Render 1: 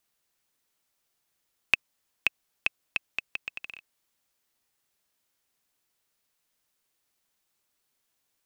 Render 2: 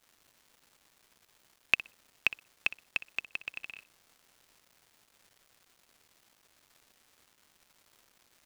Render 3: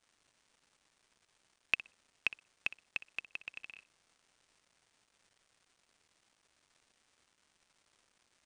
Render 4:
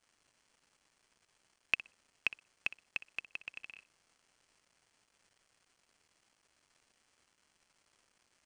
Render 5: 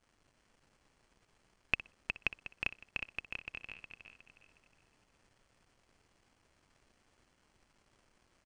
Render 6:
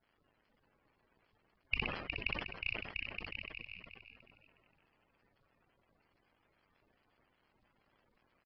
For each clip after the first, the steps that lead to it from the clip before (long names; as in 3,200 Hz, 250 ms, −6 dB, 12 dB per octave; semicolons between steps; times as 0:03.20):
flutter between parallel walls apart 10.5 metres, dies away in 0.23 s; surface crackle 560 per second −49 dBFS; level −2 dB
Chebyshev low-pass filter 9,700 Hz, order 8; level −5.5 dB
notch filter 3,700 Hz, Q 11
spectral tilt −2.5 dB per octave; on a send: repeating echo 363 ms, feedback 33%, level −6 dB; on the sum: level +2.5 dB
spectral magnitudes quantised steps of 30 dB; downsampling to 11,025 Hz; level that may fall only so fast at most 52 dB per second; level −3 dB